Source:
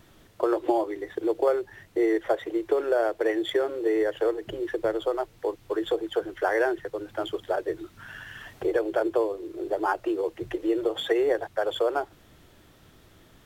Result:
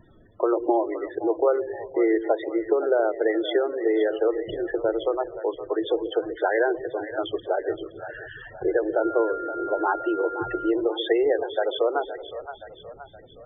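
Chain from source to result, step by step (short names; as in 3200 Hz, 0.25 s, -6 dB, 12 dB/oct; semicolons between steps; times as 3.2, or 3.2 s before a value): split-band echo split 530 Hz, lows 0.137 s, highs 0.52 s, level -11 dB; loudest bins only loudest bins 32; 9.01–10.69 whine 1400 Hz -34 dBFS; gain +2 dB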